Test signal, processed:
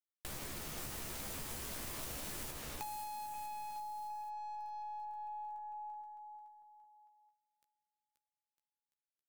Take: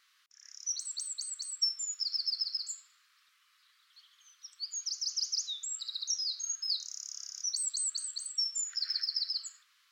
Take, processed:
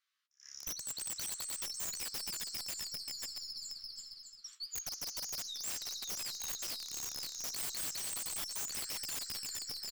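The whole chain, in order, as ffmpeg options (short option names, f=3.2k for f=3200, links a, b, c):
-filter_complex "[0:a]aeval=exprs='(tanh(25.1*val(0)+0.2)-tanh(0.2))/25.1':c=same,agate=range=-18dB:threshold=-56dB:ratio=16:detection=peak,asplit=2[a][b];[b]adelay=14,volume=-5dB[c];[a][c]amix=inputs=2:normalize=0,aecho=1:1:530|954|1293|1565|1782:0.631|0.398|0.251|0.158|0.1,acrossover=split=7100[d][e];[d]acompressor=threshold=-42dB:ratio=16[f];[f][e]amix=inputs=2:normalize=0,aeval=exprs='(mod(47.3*val(0)+1,2)-1)/47.3':c=same"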